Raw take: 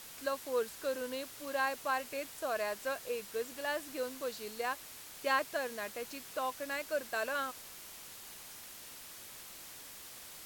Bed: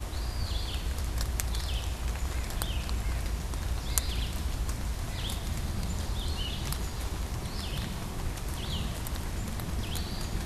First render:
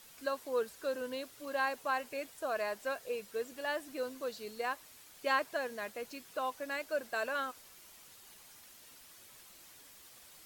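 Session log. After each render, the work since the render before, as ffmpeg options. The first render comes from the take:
ffmpeg -i in.wav -af "afftdn=noise_reduction=8:noise_floor=-50" out.wav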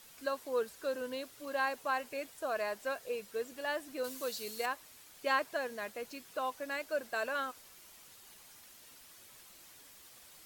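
ffmpeg -i in.wav -filter_complex "[0:a]asettb=1/sr,asplit=3[link_01][link_02][link_03];[link_01]atrim=end=4.044[link_04];[link_02]atrim=start=4.04:end=4.66,asetpts=PTS-STARTPTS,afade=type=in:duration=0.004:curve=qsin,afade=type=out:start_time=0.616:duration=0.004:curve=qsin,highshelf=frequency=3400:gain=11[link_05];[link_03]atrim=start=4.656[link_06];[link_04][link_05]acrossfade=duration=0.004:curve1=hsin:curve2=qsin[link_07];[link_07][link_06]acrossfade=duration=0.004:curve1=qsin:curve2=hsin" out.wav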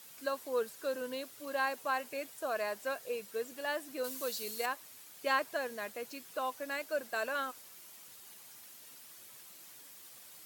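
ffmpeg -i in.wav -af "highpass=frequency=98:width=0.5412,highpass=frequency=98:width=1.3066,highshelf=frequency=9000:gain=6" out.wav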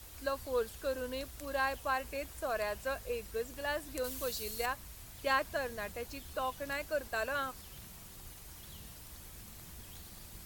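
ffmpeg -i in.wav -i bed.wav -filter_complex "[1:a]volume=-19.5dB[link_01];[0:a][link_01]amix=inputs=2:normalize=0" out.wav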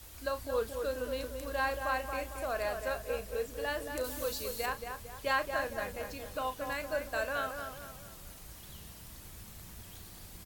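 ffmpeg -i in.wav -filter_complex "[0:a]asplit=2[link_01][link_02];[link_02]adelay=35,volume=-11dB[link_03];[link_01][link_03]amix=inputs=2:normalize=0,asplit=2[link_04][link_05];[link_05]adelay=226,lowpass=frequency=2000:poles=1,volume=-5.5dB,asplit=2[link_06][link_07];[link_07]adelay=226,lowpass=frequency=2000:poles=1,volume=0.47,asplit=2[link_08][link_09];[link_09]adelay=226,lowpass=frequency=2000:poles=1,volume=0.47,asplit=2[link_10][link_11];[link_11]adelay=226,lowpass=frequency=2000:poles=1,volume=0.47,asplit=2[link_12][link_13];[link_13]adelay=226,lowpass=frequency=2000:poles=1,volume=0.47,asplit=2[link_14][link_15];[link_15]adelay=226,lowpass=frequency=2000:poles=1,volume=0.47[link_16];[link_04][link_06][link_08][link_10][link_12][link_14][link_16]amix=inputs=7:normalize=0" out.wav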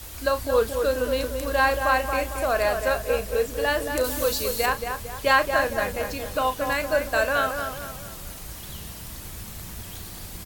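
ffmpeg -i in.wav -af "volume=11.5dB" out.wav

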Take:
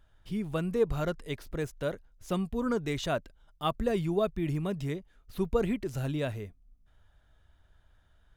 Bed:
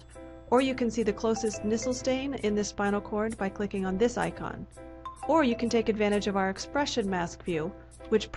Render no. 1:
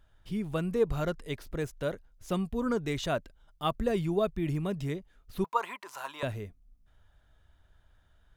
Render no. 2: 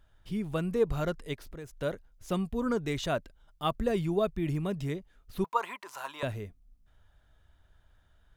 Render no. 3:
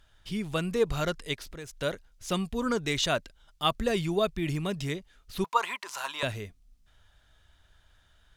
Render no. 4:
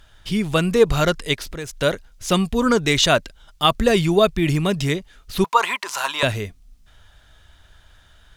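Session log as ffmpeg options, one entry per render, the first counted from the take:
ffmpeg -i in.wav -filter_complex "[0:a]asettb=1/sr,asplit=3[link_01][link_02][link_03];[link_01]atrim=end=5.444[link_04];[link_02]atrim=start=5.44:end=6.23,asetpts=PTS-STARTPTS,afade=type=in:duration=0.004:curve=qsin,afade=type=out:start_time=0.786:duration=0.004:curve=qsin,highpass=frequency=1000:width_type=q:width=8.9[link_05];[link_03]atrim=start=6.226[link_06];[link_04][link_05]acrossfade=duration=0.004:curve1=hsin:curve2=qsin[link_07];[link_07][link_06]acrossfade=duration=0.004:curve1=qsin:curve2=hsin" out.wav
ffmpeg -i in.wav -filter_complex "[0:a]asplit=3[link_01][link_02][link_03];[link_01]afade=type=out:start_time=1.33:duration=0.02[link_04];[link_02]acompressor=threshold=-43dB:ratio=2.5:attack=3.2:release=140:knee=1:detection=peak,afade=type=in:start_time=1.33:duration=0.02,afade=type=out:start_time=1.75:duration=0.02[link_05];[link_03]afade=type=in:start_time=1.75:duration=0.02[link_06];[link_04][link_05][link_06]amix=inputs=3:normalize=0" out.wav
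ffmpeg -i in.wav -af "equalizer=frequency=4900:width=0.34:gain=11" out.wav
ffmpeg -i in.wav -af "volume=11dB,alimiter=limit=-3dB:level=0:latency=1" out.wav

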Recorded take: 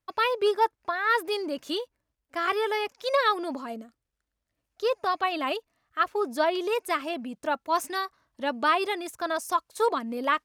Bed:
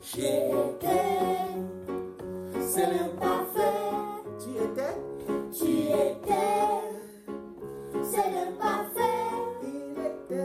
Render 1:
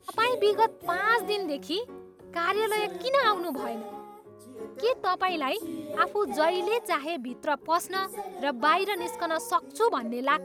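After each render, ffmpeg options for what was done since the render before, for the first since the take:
ffmpeg -i in.wav -i bed.wav -filter_complex "[1:a]volume=-10.5dB[link_01];[0:a][link_01]amix=inputs=2:normalize=0" out.wav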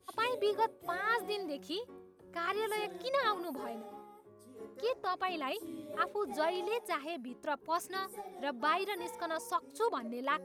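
ffmpeg -i in.wav -af "volume=-8.5dB" out.wav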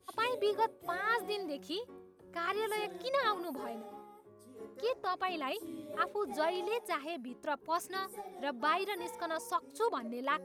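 ffmpeg -i in.wav -af anull out.wav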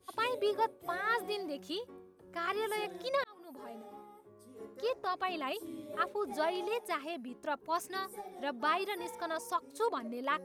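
ffmpeg -i in.wav -filter_complex "[0:a]asplit=2[link_01][link_02];[link_01]atrim=end=3.24,asetpts=PTS-STARTPTS,afade=type=out:start_time=3.236:duration=0.004:curve=hsin[link_03];[link_02]atrim=start=3.24,asetpts=PTS-STARTPTS,afade=type=in:duration=0.82[link_04];[link_03][link_04]concat=n=2:v=0:a=1" out.wav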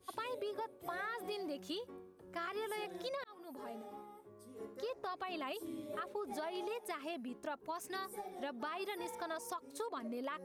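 ffmpeg -i in.wav -af "alimiter=level_in=4dB:limit=-24dB:level=0:latency=1:release=101,volume=-4dB,acompressor=threshold=-38dB:ratio=6" out.wav

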